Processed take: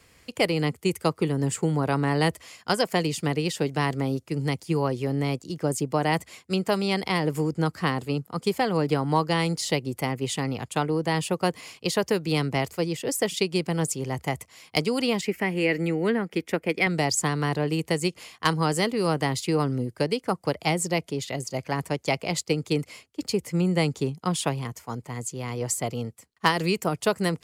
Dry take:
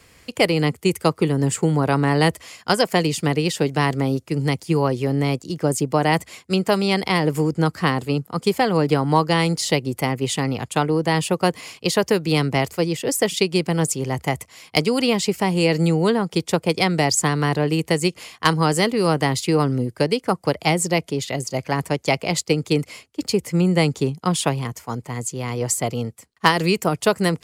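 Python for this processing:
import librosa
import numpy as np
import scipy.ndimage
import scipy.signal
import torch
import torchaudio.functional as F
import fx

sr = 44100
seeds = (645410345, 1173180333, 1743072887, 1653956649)

y = fx.graphic_eq(x, sr, hz=(125, 250, 1000, 2000, 4000, 8000), db=(-12, 5, -7, 11, -9, -8), at=(15.21, 16.87))
y = y * librosa.db_to_amplitude(-5.5)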